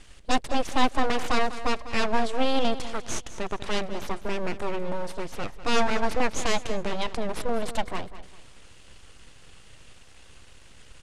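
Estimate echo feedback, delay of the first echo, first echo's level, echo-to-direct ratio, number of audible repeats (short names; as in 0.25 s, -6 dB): 32%, 0.198 s, -14.0 dB, -13.5 dB, 3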